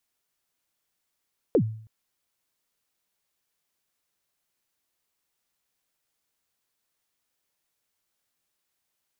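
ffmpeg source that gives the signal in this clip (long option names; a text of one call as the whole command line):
ffmpeg -f lavfi -i "aevalsrc='0.2*pow(10,-3*t/0.55)*sin(2*PI*(540*0.077/log(110/540)*(exp(log(110/540)*min(t,0.077)/0.077)-1)+110*max(t-0.077,0)))':duration=0.32:sample_rate=44100" out.wav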